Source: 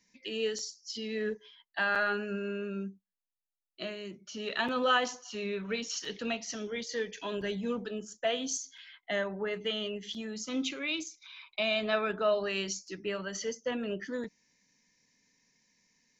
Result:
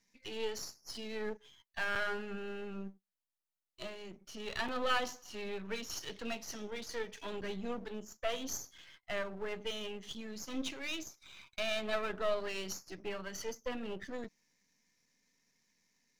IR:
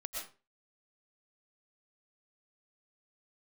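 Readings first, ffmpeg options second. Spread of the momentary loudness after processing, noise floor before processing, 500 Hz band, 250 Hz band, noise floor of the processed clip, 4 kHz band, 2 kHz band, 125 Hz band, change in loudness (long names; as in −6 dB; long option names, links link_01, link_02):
12 LU, below −85 dBFS, −6.0 dB, −7.0 dB, below −85 dBFS, −6.0 dB, −6.0 dB, −6.5 dB, −6.0 dB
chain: -af "aeval=exprs='if(lt(val(0),0),0.251*val(0),val(0))':channel_layout=same,volume=-2dB"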